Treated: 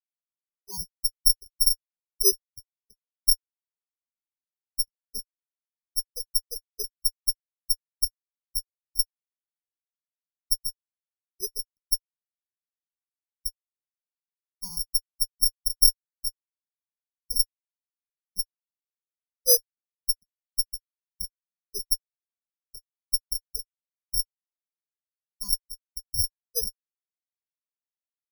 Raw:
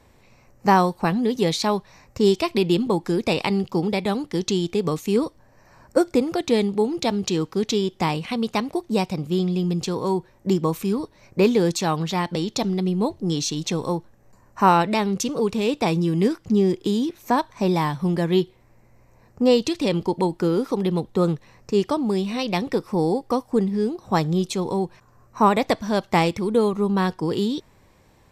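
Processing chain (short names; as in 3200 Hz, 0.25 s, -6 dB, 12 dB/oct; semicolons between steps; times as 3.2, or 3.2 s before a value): HPF 310 Hz 24 dB/oct; fixed phaser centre 470 Hz, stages 8; Schmitt trigger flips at -17 dBFS; careless resampling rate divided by 8×, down filtered, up zero stuff; spectral expander 4:1; gain +1.5 dB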